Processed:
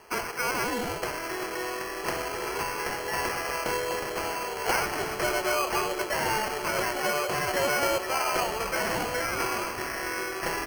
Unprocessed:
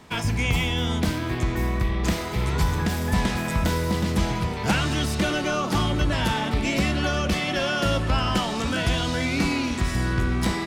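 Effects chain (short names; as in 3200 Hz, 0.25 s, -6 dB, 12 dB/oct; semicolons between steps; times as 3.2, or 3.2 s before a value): Chebyshev high-pass 360 Hz, order 6; sample-and-hold 12×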